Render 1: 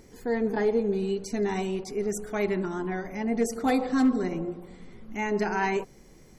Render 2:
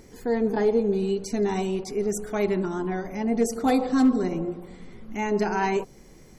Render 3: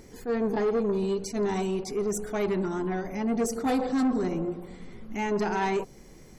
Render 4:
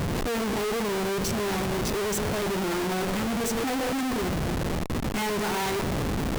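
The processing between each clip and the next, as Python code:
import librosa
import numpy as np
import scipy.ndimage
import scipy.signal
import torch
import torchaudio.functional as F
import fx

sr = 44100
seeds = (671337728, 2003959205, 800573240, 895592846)

y1 = fx.dynamic_eq(x, sr, hz=1900.0, q=1.7, threshold_db=-48.0, ratio=4.0, max_db=-5)
y1 = F.gain(torch.from_numpy(y1), 3.0).numpy()
y2 = 10.0 ** (-21.0 / 20.0) * np.tanh(y1 / 10.0 ** (-21.0 / 20.0))
y2 = fx.attack_slew(y2, sr, db_per_s=280.0)
y3 = fx.dmg_wind(y2, sr, seeds[0], corner_hz=220.0, level_db=-33.0)
y3 = fx.schmitt(y3, sr, flips_db=-46.5)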